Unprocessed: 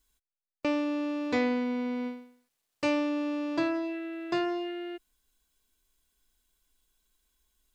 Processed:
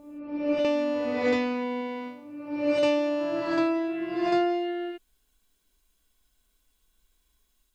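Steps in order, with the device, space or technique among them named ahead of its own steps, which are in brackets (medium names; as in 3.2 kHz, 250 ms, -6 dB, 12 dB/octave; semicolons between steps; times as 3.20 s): reverse reverb (reverse; reverberation RT60 1.2 s, pre-delay 41 ms, DRR -2 dB; reverse)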